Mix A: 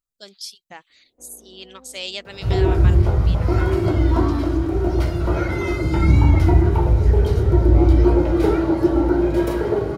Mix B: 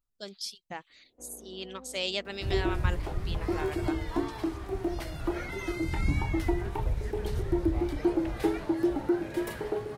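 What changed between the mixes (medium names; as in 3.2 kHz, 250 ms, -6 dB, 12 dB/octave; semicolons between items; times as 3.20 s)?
speech: add tilt EQ -1.5 dB/octave; reverb: off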